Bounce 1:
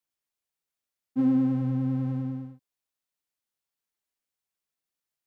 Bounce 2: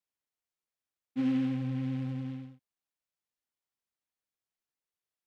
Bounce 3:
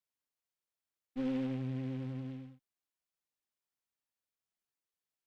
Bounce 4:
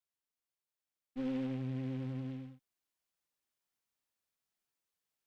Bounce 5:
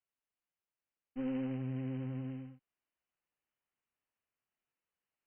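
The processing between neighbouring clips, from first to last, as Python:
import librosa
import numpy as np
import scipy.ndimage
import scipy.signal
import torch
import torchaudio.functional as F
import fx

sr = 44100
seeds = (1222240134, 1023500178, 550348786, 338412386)

y1 = fx.noise_mod_delay(x, sr, seeds[0], noise_hz=2100.0, depth_ms=0.044)
y1 = y1 * librosa.db_to_amplitude(-6.0)
y2 = fx.diode_clip(y1, sr, knee_db=-37.5)
y2 = y2 * librosa.db_to_amplitude(-2.5)
y3 = fx.rider(y2, sr, range_db=10, speed_s=2.0)
y4 = fx.brickwall_lowpass(y3, sr, high_hz=3100.0)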